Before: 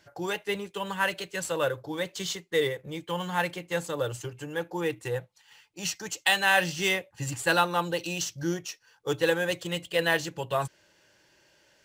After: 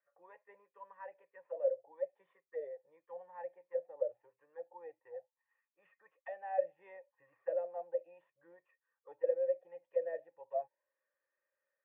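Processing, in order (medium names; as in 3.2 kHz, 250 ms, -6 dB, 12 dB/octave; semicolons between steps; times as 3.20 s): cascade formant filter e; auto-wah 600–1200 Hz, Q 14, down, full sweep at -28.5 dBFS; trim +9.5 dB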